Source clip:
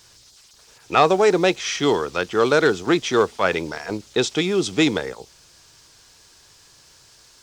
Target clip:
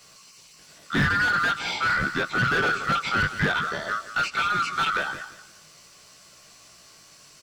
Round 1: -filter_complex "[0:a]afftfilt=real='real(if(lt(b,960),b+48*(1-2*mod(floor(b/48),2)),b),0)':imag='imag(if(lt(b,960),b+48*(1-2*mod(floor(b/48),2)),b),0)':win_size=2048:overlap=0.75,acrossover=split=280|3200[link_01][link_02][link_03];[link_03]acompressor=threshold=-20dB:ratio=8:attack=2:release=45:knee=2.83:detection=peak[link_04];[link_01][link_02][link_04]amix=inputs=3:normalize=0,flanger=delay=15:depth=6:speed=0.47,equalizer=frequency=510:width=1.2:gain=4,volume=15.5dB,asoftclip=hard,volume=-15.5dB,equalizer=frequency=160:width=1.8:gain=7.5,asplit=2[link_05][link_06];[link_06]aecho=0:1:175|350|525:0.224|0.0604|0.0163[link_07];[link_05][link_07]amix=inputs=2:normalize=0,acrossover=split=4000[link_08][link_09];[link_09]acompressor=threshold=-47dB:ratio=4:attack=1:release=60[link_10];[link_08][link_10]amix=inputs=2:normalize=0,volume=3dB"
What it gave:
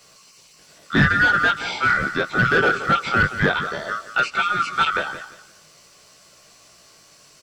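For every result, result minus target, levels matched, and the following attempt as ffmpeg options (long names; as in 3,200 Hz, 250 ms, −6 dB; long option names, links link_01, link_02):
gain into a clipping stage and back: distortion −7 dB; 500 Hz band +3.0 dB
-filter_complex "[0:a]afftfilt=real='real(if(lt(b,960),b+48*(1-2*mod(floor(b/48),2)),b),0)':imag='imag(if(lt(b,960),b+48*(1-2*mod(floor(b/48),2)),b),0)':win_size=2048:overlap=0.75,acrossover=split=280|3200[link_01][link_02][link_03];[link_03]acompressor=threshold=-20dB:ratio=8:attack=2:release=45:knee=2.83:detection=peak[link_04];[link_01][link_02][link_04]amix=inputs=3:normalize=0,flanger=delay=15:depth=6:speed=0.47,equalizer=frequency=510:width=1.2:gain=4,volume=23.5dB,asoftclip=hard,volume=-23.5dB,equalizer=frequency=160:width=1.8:gain=7.5,asplit=2[link_05][link_06];[link_06]aecho=0:1:175|350|525:0.224|0.0604|0.0163[link_07];[link_05][link_07]amix=inputs=2:normalize=0,acrossover=split=4000[link_08][link_09];[link_09]acompressor=threshold=-47dB:ratio=4:attack=1:release=60[link_10];[link_08][link_10]amix=inputs=2:normalize=0,volume=3dB"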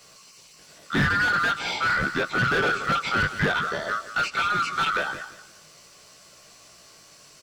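500 Hz band +2.5 dB
-filter_complex "[0:a]afftfilt=real='real(if(lt(b,960),b+48*(1-2*mod(floor(b/48),2)),b),0)':imag='imag(if(lt(b,960),b+48*(1-2*mod(floor(b/48),2)),b),0)':win_size=2048:overlap=0.75,acrossover=split=280|3200[link_01][link_02][link_03];[link_03]acompressor=threshold=-20dB:ratio=8:attack=2:release=45:knee=2.83:detection=peak[link_04];[link_01][link_02][link_04]amix=inputs=3:normalize=0,flanger=delay=15:depth=6:speed=0.47,volume=23.5dB,asoftclip=hard,volume=-23.5dB,equalizer=frequency=160:width=1.8:gain=7.5,asplit=2[link_05][link_06];[link_06]aecho=0:1:175|350|525:0.224|0.0604|0.0163[link_07];[link_05][link_07]amix=inputs=2:normalize=0,acrossover=split=4000[link_08][link_09];[link_09]acompressor=threshold=-47dB:ratio=4:attack=1:release=60[link_10];[link_08][link_10]amix=inputs=2:normalize=0,volume=3dB"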